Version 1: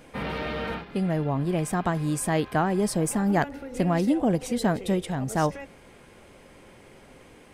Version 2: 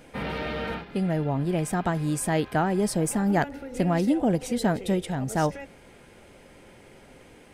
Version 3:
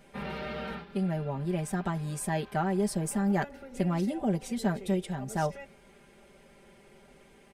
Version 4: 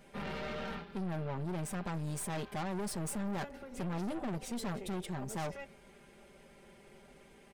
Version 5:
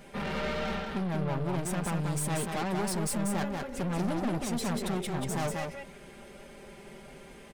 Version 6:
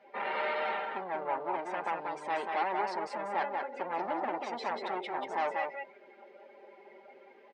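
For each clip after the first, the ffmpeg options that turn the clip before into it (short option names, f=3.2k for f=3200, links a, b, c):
-af "bandreject=f=1.1k:w=9.5"
-af "aecho=1:1:5.1:0.78,volume=-8dB"
-af "aeval=exprs='(tanh(63.1*val(0)+0.55)-tanh(0.55))/63.1':c=same,volume=1dB"
-af "asoftclip=type=tanh:threshold=-34.5dB,aecho=1:1:187:0.631,volume=8dB"
-af "afftdn=nr=13:nf=-45,highpass=f=370:w=0.5412,highpass=f=370:w=1.3066,equalizer=f=430:t=q:w=4:g=-3,equalizer=f=880:t=q:w=4:g=9,equalizer=f=2k:t=q:w=4:g=5,equalizer=f=3.4k:t=q:w=4:g=-4,lowpass=f=4.2k:w=0.5412,lowpass=f=4.2k:w=1.3066"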